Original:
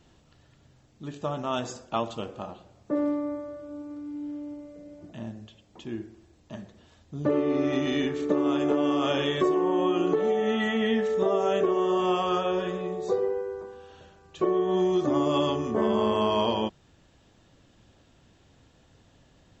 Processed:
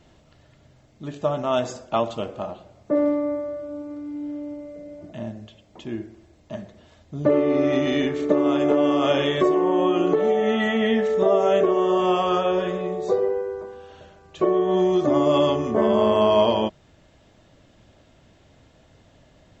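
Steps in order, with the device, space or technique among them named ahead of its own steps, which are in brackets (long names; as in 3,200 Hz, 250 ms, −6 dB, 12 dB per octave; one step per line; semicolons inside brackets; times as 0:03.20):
inside a helmet (high-shelf EQ 5,800 Hz −4 dB; hollow resonant body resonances 620/2,100 Hz, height 8 dB, ringing for 35 ms)
level +4 dB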